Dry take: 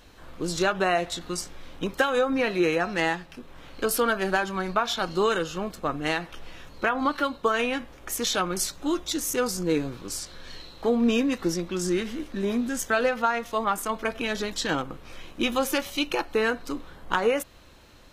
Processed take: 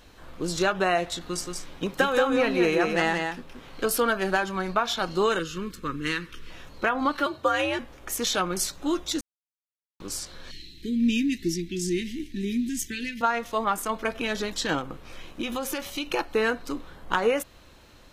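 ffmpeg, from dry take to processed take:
-filter_complex "[0:a]asettb=1/sr,asplit=3[a][b][c];[a]atrim=end=1.184[d];[b]atrim=start=1.18:end=3.89,asetpts=PTS-STARTPTS,afade=t=in:d=0.004:c=qsin,afade=t=out:st=2.706:d=0.004:c=qsin,aecho=1:1:176:0.596,atrim=end_sample=119511[e];[c]atrim=start=3.886[f];[d][e]acrossfade=d=0.004:c1=hsin:c2=qsin[g];[g][f]acrossfade=d=0.004:c1=qsin:c2=hsin,asettb=1/sr,asplit=3[h][i][j];[h]atrim=end=5.394[k];[i]atrim=start=5.39:end=6.5,asetpts=PTS-STARTPTS,afade=t=in:d=0.004:c=qsin,afade=t=out:st=1.106:d=0.004:c=qsin,asuperstop=centerf=710:order=4:qfactor=1[l];[j]atrim=start=6.496[m];[k][l]acrossfade=d=0.004:c1=hsin:c2=qsin[n];[n][m]acrossfade=d=0.004:c1=qsin:c2=hsin,asettb=1/sr,asplit=3[o][p][q];[o]atrim=end=7.264[r];[p]atrim=start=7.26:end=7.79,asetpts=PTS-STARTPTS,afade=t=in:d=0.004:c=qsin,afade=t=out:st=0.526:d=0.004:c=qsin,afreqshift=73[s];[q]atrim=start=7.786[t];[r][s]acrossfade=d=0.004:c1=hsin:c2=qsin[u];[u][t]acrossfade=d=0.004:c1=qsin:c2=hsin,asettb=1/sr,asplit=3[v][w][x];[v]atrim=end=10.514[y];[w]atrim=start=10.51:end=13.21,asetpts=PTS-STARTPTS,afade=t=in:d=0.004:c=qsin,afade=t=out:st=2.696:d=0.004:c=qsin,asuperstop=centerf=840:order=12:qfactor=0.55[z];[x]atrim=start=13.206[aa];[y][z]acrossfade=d=0.004:c1=hsin:c2=qsin[ab];[ab][aa]acrossfade=d=0.004:c1=qsin:c2=hsin,asettb=1/sr,asplit=3[ac][ad][ae];[ac]atrim=end=14.784[af];[ad]atrim=start=14.78:end=16.07,asetpts=PTS-STARTPTS,afade=t=in:d=0.004:c=qsin,afade=t=out:st=1.286:d=0.004:c=qsin,acompressor=threshold=-26dB:ratio=6:attack=3.2:release=140:knee=1:detection=peak[ag];[ae]atrim=start=16.066[ah];[af][ag]acrossfade=d=0.004:c1=hsin:c2=qsin[ai];[ai][ah]acrossfade=d=0.004:c1=qsin:c2=hsin,asplit=3[aj][ak][al];[aj]atrim=end=9.21,asetpts=PTS-STARTPTS,afade=t=out:st=9.206:d=0.004:c=hsin[am];[ak]atrim=start=9.21:end=10,asetpts=PTS-STARTPTS,volume=0[an];[al]atrim=start=10,asetpts=PTS-STARTPTS,afade=t=in:d=0.004:c=hsin[ao];[am][an][ao]concat=n=3:v=0:a=1"

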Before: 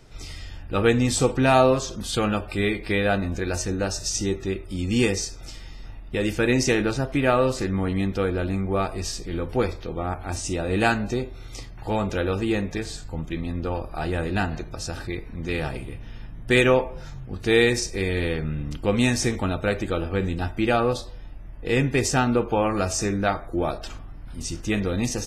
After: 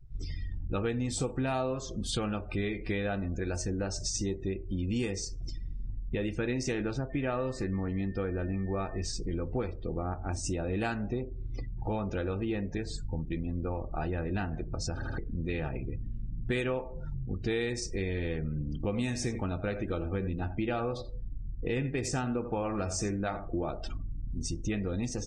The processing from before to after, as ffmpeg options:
-filter_complex "[0:a]asettb=1/sr,asplit=3[a][b][c];[a]atrim=end=7.104[d];[b]atrim=start=7.1:end=9.05,asetpts=PTS-STARTPTS,afade=t=in:d=0.004:c=qsin,afade=t=out:st=1.946:d=0.004:c=qsin,aeval=exprs='val(0)+0.00631*sin(2*PI*1800*n/s)':c=same[e];[c]atrim=start=9.046[f];[d][e]acrossfade=d=0.004:c1=hsin:c2=qsin[g];[g][f]acrossfade=d=0.004:c1=qsin:c2=hsin,asettb=1/sr,asplit=3[h][i][j];[h]atrim=end=11.024[k];[i]atrim=start=11.02:end=11.72,asetpts=PTS-STARTPTS,afade=t=in:d=0.004:c=qsin,afade=t=out:st=0.696:d=0.004:c=qsin,lowpass=4.3k[l];[j]atrim=start=11.716[m];[k][l]acrossfade=d=0.004:c1=hsin:c2=qsin[n];[n][m]acrossfade=d=0.004:c1=qsin:c2=hsin,asettb=1/sr,asplit=3[o][p][q];[o]atrim=end=18.374[r];[p]atrim=start=18.37:end=23.7,asetpts=PTS-STARTPTS,afade=t=in:d=0.004:c=qsin,afade=t=out:st=5.326:d=0.004:c=qsin,aecho=1:1:87:0.251,atrim=end_sample=235053[s];[q]atrim=start=23.696[t];[r][s]acrossfade=d=0.004:c1=hsin:c2=qsin[u];[u][t]acrossfade=d=0.004:c1=qsin:c2=hsin,asplit=4[v][w][x][y];[v]atrim=end=15.022[z];[w]atrim=start=14.938:end=15.022[aa];[x]atrim=start=14.938:end=15.022[ab];[y]atrim=start=15.178[ac];[z][aa]acrossfade=d=0.004:c1=hsin:c2=hsin[ad];[ad][ab]acrossfade=d=0.004:c1=hsin:c2=hsin[ae];[ae][ac]acrossfade=d=0.004:c1=hsin:c2=hsin,afftdn=nr=32:nf=-38,lowshelf=f=400:g=4,acompressor=threshold=-31dB:ratio=4"

